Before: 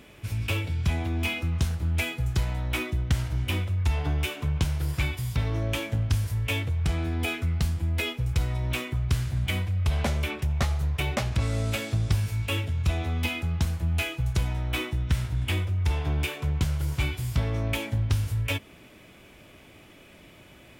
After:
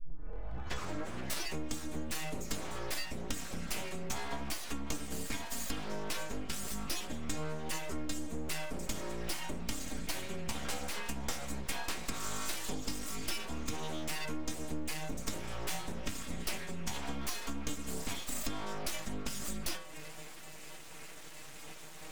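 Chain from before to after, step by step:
turntable start at the beginning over 1.40 s
speed change −6%
pitch vibrato 1.6 Hz 12 cents
stiff-string resonator 150 Hz, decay 0.45 s, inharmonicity 0.008
downward compressor 6 to 1, threshold −51 dBFS, peak gain reduction 15.5 dB
parametric band 7,300 Hz +11.5 dB 0.59 octaves
full-wave rectification
level +18 dB

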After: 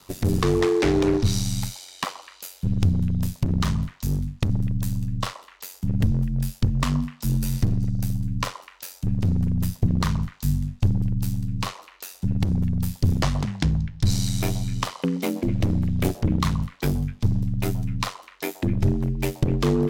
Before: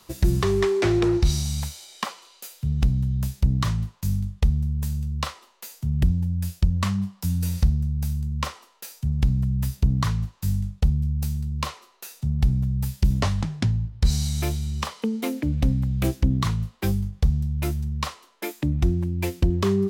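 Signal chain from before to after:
ring modulation 46 Hz
echo through a band-pass that steps 126 ms, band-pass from 750 Hz, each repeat 1.4 octaves, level −11 dB
asymmetric clip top −21 dBFS, bottom −14.5 dBFS
level +4.5 dB

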